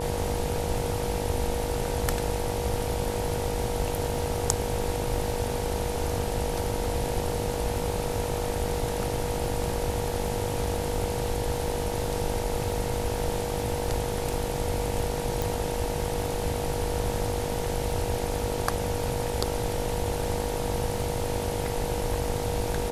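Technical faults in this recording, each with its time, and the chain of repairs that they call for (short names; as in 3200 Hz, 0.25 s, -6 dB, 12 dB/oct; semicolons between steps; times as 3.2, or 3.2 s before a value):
buzz 50 Hz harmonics 19 -34 dBFS
crackle 25/s -36 dBFS
tone 480 Hz -32 dBFS
15.42 pop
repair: de-click; de-hum 50 Hz, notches 19; notch 480 Hz, Q 30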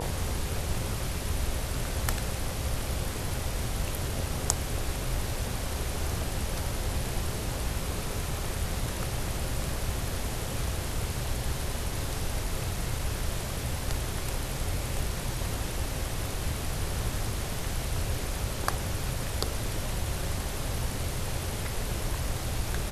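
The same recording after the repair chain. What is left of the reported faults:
15.42 pop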